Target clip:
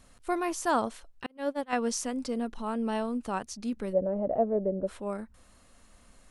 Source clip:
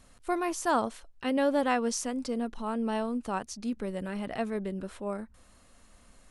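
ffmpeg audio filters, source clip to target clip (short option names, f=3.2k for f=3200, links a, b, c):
-filter_complex "[0:a]asettb=1/sr,asplit=3[a][b][c];[a]atrim=end=1.264[d];[b]atrim=start=1.26:end=1.73,asetpts=PTS-STARTPTS,afade=t=in:d=0.004:c=qsin,afade=t=out:st=0.466:d=0.004:c=qsin,agate=range=-42dB:threshold=-23dB:ratio=16:detection=peak[e];[c]atrim=start=1.726[f];[d][e]acrossfade=d=0.004:c1=hsin:c2=qsin[g];[g][f]acrossfade=d=0.004:c1=qsin:c2=hsin,asplit=3[h][i][j];[h]afade=t=out:st=3.92:d=0.02[k];[i]lowpass=f=590:t=q:w=4.9,afade=t=in:st=3.92:d=0.02,afade=t=out:st=4.86:d=0.02[l];[j]afade=t=in:st=4.86:d=0.02[m];[k][l][m]amix=inputs=3:normalize=0"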